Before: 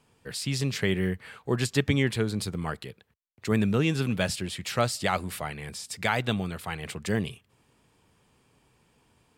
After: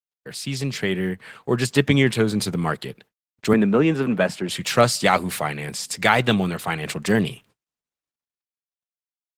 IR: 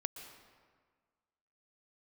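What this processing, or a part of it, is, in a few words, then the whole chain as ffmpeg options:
video call: -filter_complex "[0:a]asettb=1/sr,asplit=3[a][b][c];[a]atrim=end=3.534[d];[b]atrim=start=3.53:end=4.49,asetpts=PTS-STARTPTS,afade=t=in:d=0.004:c=qsin,afade=t=out:st=0.956:d=0.004:c=qsin,acrossover=split=170 2000:gain=0.112 1 0.2[e][f][g];[e][f][g]amix=inputs=3:normalize=0[h];[c]atrim=start=4.486[i];[d][h]acrossfade=d=0.004:c1=hsin:c2=qsin[j];[j][i]acrossfade=d=0.004:c1=qsin:c2=hsin,highpass=f=120:w=0.5412,highpass=f=120:w=1.3066,dynaudnorm=f=260:g=13:m=7.5dB,agate=range=-44dB:threshold=-52dB:ratio=16:detection=peak,volume=3dB" -ar 48000 -c:a libopus -b:a 16k

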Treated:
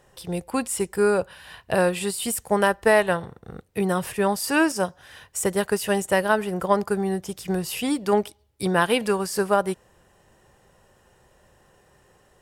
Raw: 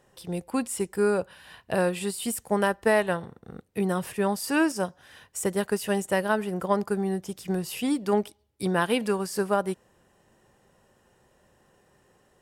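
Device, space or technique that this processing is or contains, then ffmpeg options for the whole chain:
low shelf boost with a cut just above: -af "lowshelf=f=65:g=6,equalizer=f=240:t=o:w=1.1:g=-5,volume=5dB"

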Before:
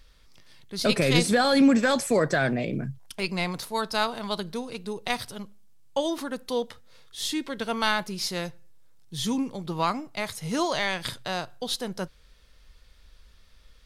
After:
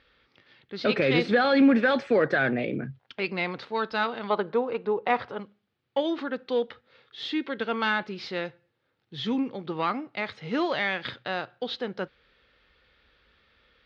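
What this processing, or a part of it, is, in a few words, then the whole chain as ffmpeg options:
overdrive pedal into a guitar cabinet: -filter_complex "[0:a]asplit=2[a][b];[b]highpass=f=720:p=1,volume=14dB,asoftclip=type=tanh:threshold=-6dB[c];[a][c]amix=inputs=2:normalize=0,lowpass=f=1.2k:p=1,volume=-6dB,highpass=82,equalizer=f=170:t=q:w=4:g=-5,equalizer=f=660:t=q:w=4:g=-7,equalizer=f=1k:t=q:w=4:g=-9,lowpass=f=4k:w=0.5412,lowpass=f=4k:w=1.3066,asettb=1/sr,asplit=3[d][e][f];[d]atrim=end=4.304[g];[e]atrim=start=4.3:end=5.4,asetpts=PTS-STARTPTS,afade=t=in:d=0.004:c=qsin,afade=t=out:st=1.096:d=0.004:c=qsin,equalizer=f=500:t=o:w=1:g=6,equalizer=f=1k:t=o:w=1:g=10,equalizer=f=4k:t=o:w=1:g=-6,equalizer=f=8k:t=o:w=1:g=-7[h];[f]atrim=start=5.396[i];[g][h]acrossfade=d=0.004:c1=hsin:c2=qsin[j];[j][i]acrossfade=d=0.004:c1=qsin:c2=hsin"

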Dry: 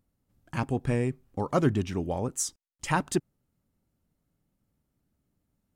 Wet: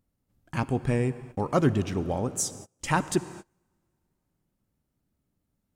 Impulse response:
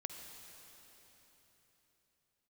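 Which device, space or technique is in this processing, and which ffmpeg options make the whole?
keyed gated reverb: -filter_complex "[0:a]asplit=3[a][b][c];[1:a]atrim=start_sample=2205[d];[b][d]afir=irnorm=-1:irlink=0[e];[c]apad=whole_len=253673[f];[e][f]sidechaingate=range=-30dB:threshold=-53dB:ratio=16:detection=peak,volume=-4dB[g];[a][g]amix=inputs=2:normalize=0,volume=-1.5dB"

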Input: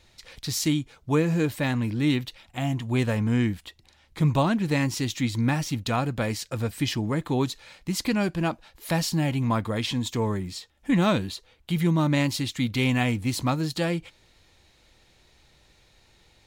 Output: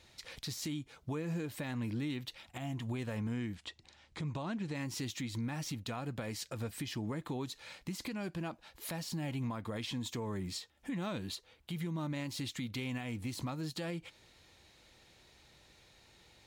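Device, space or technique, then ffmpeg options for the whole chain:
podcast mastering chain: -filter_complex "[0:a]asettb=1/sr,asplit=3[a][b][c];[a]atrim=end=3.554[d];[b]atrim=start=3.55:end=4.75,asetpts=PTS-STARTPTS,afade=t=in:d=0.004:c=qsin,afade=t=out:st=1.196:d=0.004:c=qsin,lowpass=f=8.4k:w=0.5412,lowpass=f=8.4k:w=1.3066[e];[c]atrim=start=4.746[f];[d][e]acrossfade=d=0.004:c1=hsin:c2=qsin[g];[g][f]acrossfade=d=0.004:c1=qsin:c2=hsin,highpass=f=83:p=1,deesser=0.6,acompressor=threshold=-29dB:ratio=3,alimiter=level_in=4.5dB:limit=-24dB:level=0:latency=1:release=253,volume=-4.5dB,volume=-1.5dB" -ar 48000 -c:a libmp3lame -b:a 112k

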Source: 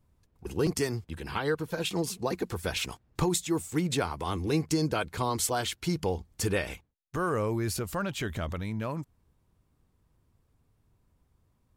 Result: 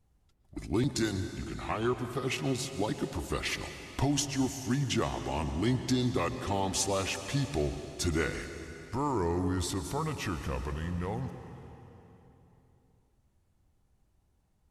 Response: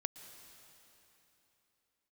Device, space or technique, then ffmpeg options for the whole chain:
slowed and reverbed: -filter_complex "[0:a]asetrate=35280,aresample=44100[a];[1:a]atrim=start_sample=2205[b];[a][b]afir=irnorm=-1:irlink=0"

